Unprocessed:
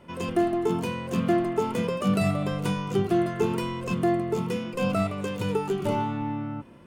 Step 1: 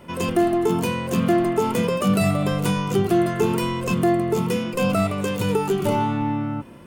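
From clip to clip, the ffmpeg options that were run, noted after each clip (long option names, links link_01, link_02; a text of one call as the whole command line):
ffmpeg -i in.wav -filter_complex "[0:a]highshelf=frequency=9400:gain=10.5,asplit=2[link_01][link_02];[link_02]alimiter=limit=-20dB:level=0:latency=1,volume=1dB[link_03];[link_01][link_03]amix=inputs=2:normalize=0" out.wav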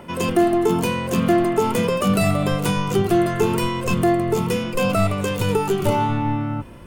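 ffmpeg -i in.wav -filter_complex "[0:a]asubboost=boost=4.5:cutoff=85,acrossover=split=120|2400[link_01][link_02][link_03];[link_01]aeval=exprs='clip(val(0),-1,0.0112)':channel_layout=same[link_04];[link_02]acompressor=mode=upward:threshold=-42dB:ratio=2.5[link_05];[link_04][link_05][link_03]amix=inputs=3:normalize=0,volume=2.5dB" out.wav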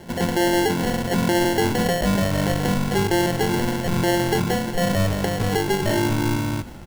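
ffmpeg -i in.wav -filter_complex "[0:a]alimiter=limit=-12.5dB:level=0:latency=1:release=11,acrusher=samples=36:mix=1:aa=0.000001,asplit=6[link_01][link_02][link_03][link_04][link_05][link_06];[link_02]adelay=174,afreqshift=-50,volume=-19.5dB[link_07];[link_03]adelay=348,afreqshift=-100,volume=-24.1dB[link_08];[link_04]adelay=522,afreqshift=-150,volume=-28.7dB[link_09];[link_05]adelay=696,afreqshift=-200,volume=-33.2dB[link_10];[link_06]adelay=870,afreqshift=-250,volume=-37.8dB[link_11];[link_01][link_07][link_08][link_09][link_10][link_11]amix=inputs=6:normalize=0" out.wav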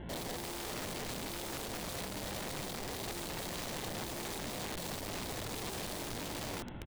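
ffmpeg -i in.wav -af "aresample=8000,asoftclip=type=tanh:threshold=-24dB,aresample=44100,aeval=exprs='val(0)+0.01*(sin(2*PI*60*n/s)+sin(2*PI*2*60*n/s)/2+sin(2*PI*3*60*n/s)/3+sin(2*PI*4*60*n/s)/4+sin(2*PI*5*60*n/s)/5)':channel_layout=same,aeval=exprs='(mod(28.2*val(0)+1,2)-1)/28.2':channel_layout=same,volume=-6.5dB" out.wav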